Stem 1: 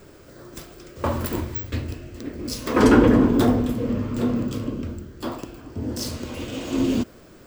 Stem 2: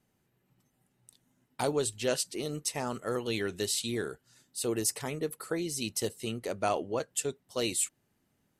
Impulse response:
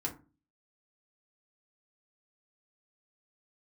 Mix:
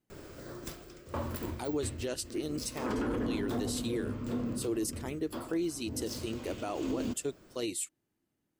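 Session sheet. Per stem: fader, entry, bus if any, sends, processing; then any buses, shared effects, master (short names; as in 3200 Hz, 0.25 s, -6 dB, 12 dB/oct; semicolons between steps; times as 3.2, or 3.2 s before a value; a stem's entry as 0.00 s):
-0.5 dB, 0.10 s, no send, auto duck -10 dB, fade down 0.60 s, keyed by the second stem
0.0 dB, 0.00 s, no send, bell 320 Hz +10 dB 0.39 oct; upward expander 1.5:1, over -42 dBFS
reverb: off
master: limiter -25 dBFS, peak gain reduction 11 dB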